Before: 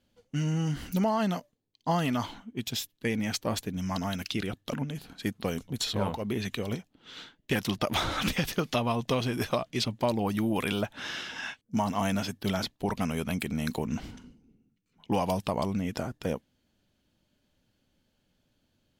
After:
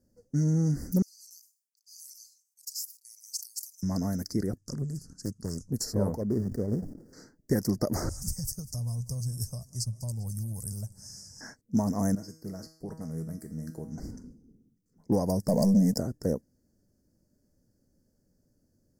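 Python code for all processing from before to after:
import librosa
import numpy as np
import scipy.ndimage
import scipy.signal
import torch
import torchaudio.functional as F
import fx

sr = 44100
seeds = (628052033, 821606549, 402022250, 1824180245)

y = fx.chain(x, sr, fx.cheby_ripple_highpass(hz=2600.0, ripple_db=3),
    fx.sustainer(db_per_s=140.0), at=(1.02, 3.83))
y = fx.chain(y, sr, fx.curve_eq(hz=(140.0, 210.0, 690.0, 1300.0, 2200.0, 6500.0, 9300.0, 15000.0), db=(0, -6, -17, -3, -14, 7, 3, -15)),
    fx.doppler_dist(depth_ms=0.73), at=(4.58, 5.71))
y = fx.chain(y, sr, fx.median_filter(points=41),
    fx.sustainer(db_per_s=89.0), at=(6.21, 7.13))
y = fx.chain(y, sr, fx.curve_eq(hz=(120.0, 320.0, 870.0, 1600.0, 8700.0, 13000.0), db=(0, -29, -17, -25, 7, -1)),
    fx.echo_warbled(ms=198, feedback_pct=68, rate_hz=2.8, cents=128, wet_db=-20.0), at=(8.09, 11.41))
y = fx.chain(y, sr, fx.comb_fb(f0_hz=160.0, decay_s=0.55, harmonics='all', damping=0.0, mix_pct=80),
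    fx.doppler_dist(depth_ms=0.13), at=(12.15, 13.98))
y = fx.chain(y, sr, fx.peak_eq(hz=340.0, db=-11.5, octaves=0.41),
    fx.leveller(passes=3),
    fx.fixed_phaser(hz=350.0, stages=6), at=(15.48, 15.98))
y = scipy.signal.sosfilt(scipy.signal.ellip(3, 1.0, 40, [1900.0, 4800.0], 'bandstop', fs=sr, output='sos'), y)
y = fx.band_shelf(y, sr, hz=1700.0, db=-12.5, octaves=2.7)
y = y * librosa.db_to_amplitude(3.5)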